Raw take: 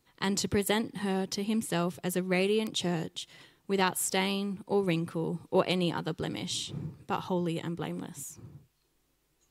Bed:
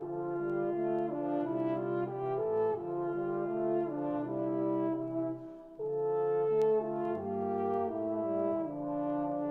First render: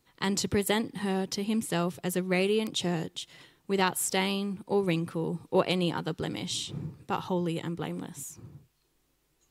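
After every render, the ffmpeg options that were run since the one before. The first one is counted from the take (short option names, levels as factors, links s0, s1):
-af "volume=1.12"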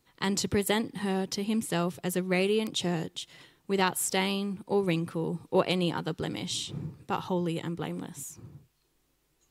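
-af anull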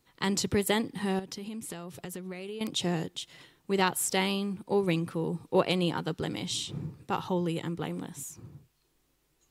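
-filter_complex "[0:a]asettb=1/sr,asplit=3[s0][s1][s2];[s0]atrim=end=1.194[s3];[s1]atrim=start=1.19:end=2.61,asetpts=PTS-STARTPTS,afade=t=in:d=0.004:c=qsin,afade=t=out:st=1.416:d=0.004:c=qsin,acompressor=threshold=0.0178:ratio=10:attack=3.2:release=140:knee=1:detection=peak[s4];[s2]atrim=start=2.606[s5];[s3][s4]acrossfade=d=0.004:c1=hsin:c2=qsin[s6];[s6][s5]acrossfade=d=0.004:c1=qsin:c2=hsin"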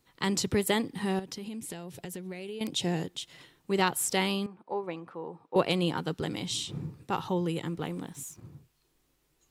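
-filter_complex "[0:a]asettb=1/sr,asplit=3[s0][s1][s2];[s0]atrim=end=1.474[s3];[s1]atrim=start=1.47:end=3,asetpts=PTS-STARTPTS,afade=t=in:d=0.004:c=qsin,afade=t=out:st=1.526:d=0.004:c=qsin,equalizer=f=1200:t=o:w=0.29:g=-9.5[s4];[s2]atrim=start=2.996[s5];[s3][s4]acrossfade=d=0.004:c1=hsin:c2=qsin[s6];[s6][s5]acrossfade=d=0.004:c1=qsin:c2=hsin,asettb=1/sr,asplit=3[s7][s8][s9];[s7]atrim=end=4.464[s10];[s8]atrim=start=4.46:end=5.56,asetpts=PTS-STARTPTS,afade=t=in:d=0.004:c=qsin,afade=t=out:st=1.096:d=0.004:c=qsin,bandpass=f=850:t=q:w=1.3[s11];[s9]atrim=start=5.556[s12];[s10][s11]acrossfade=d=0.004:c1=hsin:c2=qsin[s13];[s13][s12]acrossfade=d=0.004:c1=qsin:c2=hsin,asettb=1/sr,asplit=3[s14][s15][s16];[s14]atrim=end=7.684[s17];[s15]atrim=start=7.68:end=8.45,asetpts=PTS-STARTPTS,afade=t=in:d=0.004:c=qsin,afade=t=out:st=0.766:d=0.004:c=qsin,aeval=exprs='sgn(val(0))*max(abs(val(0))-0.001,0)':c=same[s18];[s16]atrim=start=8.446[s19];[s17][s18]acrossfade=d=0.004:c1=hsin:c2=qsin[s20];[s20][s19]acrossfade=d=0.004:c1=qsin:c2=hsin"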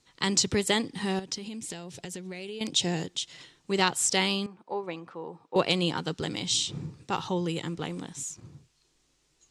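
-af "lowpass=f=7100:w=0.5412,lowpass=f=7100:w=1.3066,aemphasis=mode=production:type=75kf"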